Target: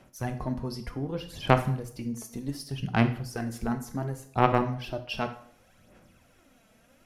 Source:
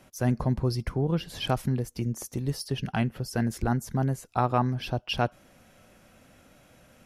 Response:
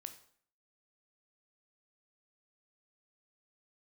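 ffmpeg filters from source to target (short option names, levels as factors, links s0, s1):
-filter_complex "[0:a]aphaser=in_gain=1:out_gain=1:delay=4.6:decay=0.56:speed=0.67:type=sinusoidal,aeval=exprs='0.631*(cos(1*acos(clip(val(0)/0.631,-1,1)))-cos(1*PI/2))+0.126*(cos(3*acos(clip(val(0)/0.631,-1,1)))-cos(3*PI/2))':c=same[s0];[1:a]atrim=start_sample=2205[s1];[s0][s1]afir=irnorm=-1:irlink=0,volume=2.24"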